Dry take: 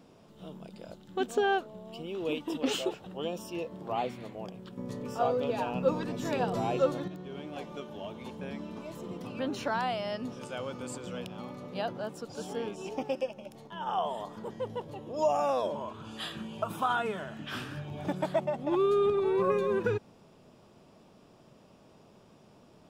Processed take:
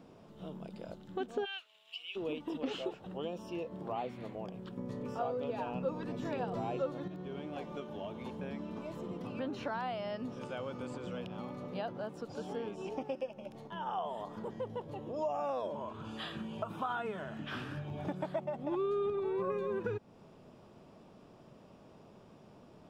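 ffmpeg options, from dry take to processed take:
ffmpeg -i in.wav -filter_complex "[0:a]asplit=3[link_01][link_02][link_03];[link_01]afade=type=out:start_time=1.44:duration=0.02[link_04];[link_02]highpass=frequency=2700:width_type=q:width=3.4,afade=type=in:start_time=1.44:duration=0.02,afade=type=out:start_time=2.15:duration=0.02[link_05];[link_03]afade=type=in:start_time=2.15:duration=0.02[link_06];[link_04][link_05][link_06]amix=inputs=3:normalize=0,acrossover=split=5400[link_07][link_08];[link_08]acompressor=threshold=-58dB:ratio=4:attack=1:release=60[link_09];[link_07][link_09]amix=inputs=2:normalize=0,highshelf=frequency=3400:gain=-8,acompressor=threshold=-40dB:ratio=2,volume=1dB" out.wav

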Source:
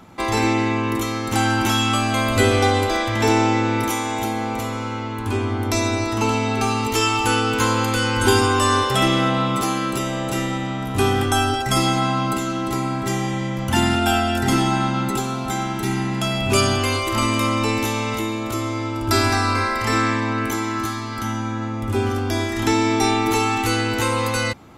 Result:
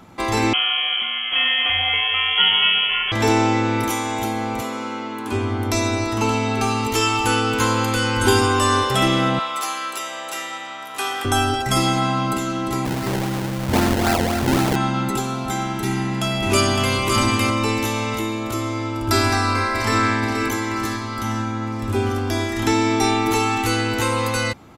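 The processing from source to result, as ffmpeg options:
ffmpeg -i in.wav -filter_complex "[0:a]asettb=1/sr,asplit=3[link_01][link_02][link_03];[link_01]atrim=end=0.534[link_04];[link_02]atrim=start=0.53:end=3.12,asetpts=PTS-STARTPTS,afade=type=in:duration=0.004:curve=qsin,afade=type=out:start_time=2.586:duration=0.004:curve=qsin,lowpass=frequency=2900:width_type=q:width=0.5098,lowpass=frequency=2900:width_type=q:width=0.6013,lowpass=frequency=2900:width_type=q:width=0.9,lowpass=frequency=2900:width_type=q:width=2.563,afreqshift=-3400[link_05];[link_03]atrim=start=3.116[link_06];[link_04][link_05]acrossfade=duration=0.004:curve1=hsin:curve2=qsin[link_07];[link_07][link_06]acrossfade=duration=0.004:curve1=qsin:curve2=hsin,asettb=1/sr,asplit=3[link_08][link_09][link_10];[link_08]atrim=end=4.614[link_11];[link_09]atrim=start=4.61:end=5.32,asetpts=PTS-STARTPTS,afade=type=in:duration=0.004:curve=qsin,afade=type=out:start_time=0.706:duration=0.004:curve=qsin,highpass=frequency=180:width=0.5412,highpass=frequency=180:width=1.3066[link_12];[link_10]atrim=start=5.316[link_13];[link_11][link_12]acrossfade=duration=0.004:curve1=hsin:curve2=qsin[link_14];[link_14][link_13]acrossfade=duration=0.004:curve1=qsin:curve2=hsin,asettb=1/sr,asplit=3[link_15][link_16][link_17];[link_15]atrim=end=9.394[link_18];[link_16]atrim=start=9.39:end=11.25,asetpts=PTS-STARTPTS,afade=type=in:duration=0.004:curve=qsin,afade=type=out:start_time=1.856:duration=0.004:curve=qsin,highpass=830[link_19];[link_17]atrim=start=11.246[link_20];[link_18][link_19]acrossfade=duration=0.004:curve1=hsin:curve2=qsin[link_21];[link_21][link_20]acrossfade=duration=0.004:curve1=qsin:curve2=hsin,asettb=1/sr,asplit=3[link_22][link_23][link_24];[link_22]atrim=end=12.854[link_25];[link_23]atrim=start=12.85:end=14.76,asetpts=PTS-STARTPTS,afade=type=in:duration=0.004:curve=qsin,afade=type=out:start_time=1.906:duration=0.004:curve=qsin,acrusher=samples=26:mix=1:aa=0.000001:lfo=1:lforange=26:lforate=3.8[link_26];[link_24]atrim=start=14.756[link_27];[link_25][link_26]acrossfade=duration=0.004:curve1=hsin:curve2=qsin[link_28];[link_28][link_27]acrossfade=duration=0.004:curve1=qsin:curve2=hsin,asplit=2[link_29][link_30];[link_30]afade=type=in:start_time=15.86:duration=0.01,afade=type=out:start_time=16.94:duration=0.01,aecho=0:1:560|1120|1680:0.630957|0.0946436|0.0141965[link_31];[link_29][link_31]amix=inputs=2:normalize=0,asplit=2[link_32][link_33];[link_33]afade=type=in:start_time=19.26:duration=0.01,afade=type=out:start_time=20:duration=0.01,aecho=0:1:480|960|1440|1920|2400|2880|3360|3840:0.398107|0.238864|0.143319|0.0859911|0.0515947|0.0309568|0.0185741|0.0111445[link_34];[link_32][link_34]amix=inputs=2:normalize=0" out.wav

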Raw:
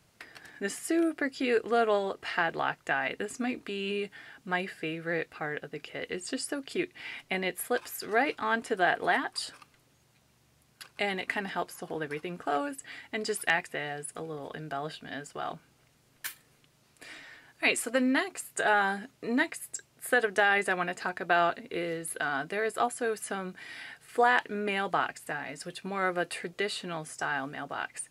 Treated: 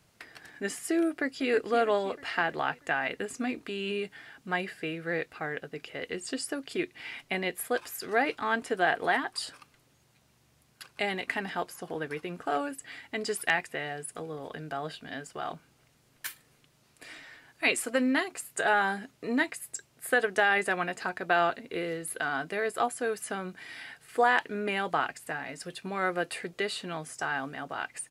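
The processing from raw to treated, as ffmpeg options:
ffmpeg -i in.wav -filter_complex "[0:a]asplit=2[link_01][link_02];[link_02]afade=type=in:start_time=1.08:duration=0.01,afade=type=out:start_time=1.5:duration=0.01,aecho=0:1:320|640|960|1280|1600|1920:0.266073|0.14634|0.0804869|0.0442678|0.0243473|0.013391[link_03];[link_01][link_03]amix=inputs=2:normalize=0" out.wav

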